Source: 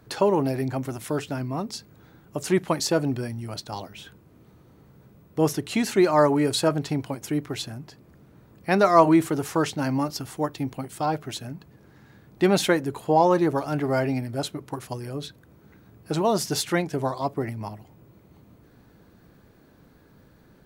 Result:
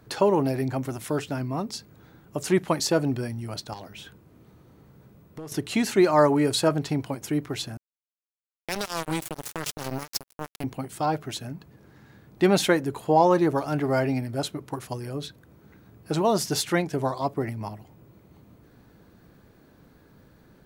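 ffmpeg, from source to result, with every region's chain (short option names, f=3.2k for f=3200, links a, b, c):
-filter_complex "[0:a]asettb=1/sr,asplit=3[a][b][c];[a]atrim=end=3.734[d];[b]atrim=start=3.73:end=5.52,asetpts=PTS-STARTPTS,afade=t=in:d=0.004:c=qsin,afade=t=out:st=1.786:d=0.004:c=qsin,acompressor=threshold=-34dB:ratio=6:attack=3.2:release=140:knee=1:detection=peak,asoftclip=type=hard:threshold=-33dB[e];[c]atrim=start=5.516[f];[d][e]acrossfade=d=0.004:c1=hsin:c2=qsin[g];[g][f]acrossfade=d=0.004:c1=qsin:c2=hsin,asettb=1/sr,asplit=3[h][i][j];[h]atrim=end=7.774[k];[i]atrim=start=7.77:end=10.64,asetpts=PTS-STARTPTS,afade=t=in:d=0.004:c=qsin,afade=t=out:st=2.866:d=0.004:c=qsin,highshelf=f=5.1k:g=8,acrossover=split=150|3000[l][m][n];[m]acompressor=threshold=-30dB:ratio=4:attack=3.2:release=140:knee=2.83:detection=peak[o];[l][o][n]amix=inputs=3:normalize=0,acrusher=bits=3:mix=0:aa=0.5[p];[j]atrim=start=10.636[q];[k][p]acrossfade=d=0.004:c1=hsin:c2=qsin[r];[r][q]acrossfade=d=0.004:c1=qsin:c2=hsin"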